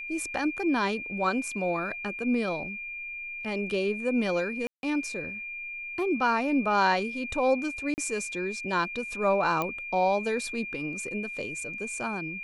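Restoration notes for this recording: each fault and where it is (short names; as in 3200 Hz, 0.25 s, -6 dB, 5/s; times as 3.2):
tone 2400 Hz -35 dBFS
4.67–4.83 gap 0.161 s
7.94–7.98 gap 39 ms
9.62 pop -15 dBFS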